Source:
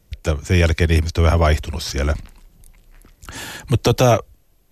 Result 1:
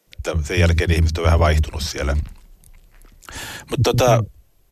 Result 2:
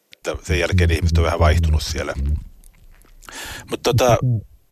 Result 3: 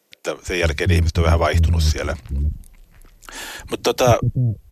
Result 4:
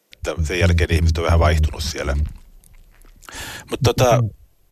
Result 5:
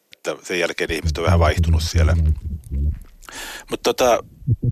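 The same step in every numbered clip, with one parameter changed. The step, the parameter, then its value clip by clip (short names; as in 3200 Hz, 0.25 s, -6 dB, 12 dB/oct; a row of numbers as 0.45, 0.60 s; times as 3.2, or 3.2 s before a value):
bands offset in time, time: 70, 220, 360, 110, 770 ms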